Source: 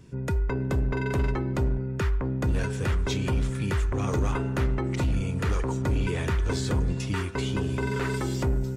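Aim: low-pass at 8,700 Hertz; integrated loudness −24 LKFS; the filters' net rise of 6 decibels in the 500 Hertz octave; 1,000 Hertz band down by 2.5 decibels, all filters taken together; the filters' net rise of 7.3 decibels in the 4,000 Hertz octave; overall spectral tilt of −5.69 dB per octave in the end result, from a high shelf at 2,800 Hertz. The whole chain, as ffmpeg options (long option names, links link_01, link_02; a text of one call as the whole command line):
ffmpeg -i in.wav -af "lowpass=8700,equalizer=frequency=500:width_type=o:gain=9,equalizer=frequency=1000:width_type=o:gain=-7,highshelf=frequency=2800:gain=7,equalizer=frequency=4000:width_type=o:gain=4,volume=2dB" out.wav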